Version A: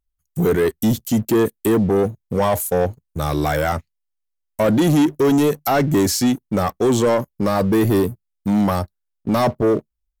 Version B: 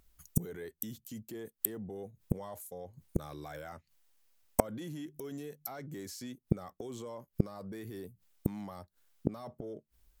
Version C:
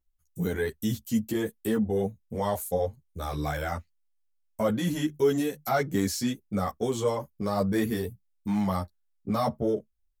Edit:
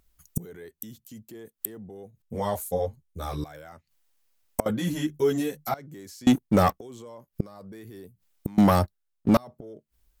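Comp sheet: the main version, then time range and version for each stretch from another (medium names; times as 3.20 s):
B
2.22–3.44 s: from C
4.66–5.74 s: from C
6.27–6.78 s: from A
8.58–9.37 s: from A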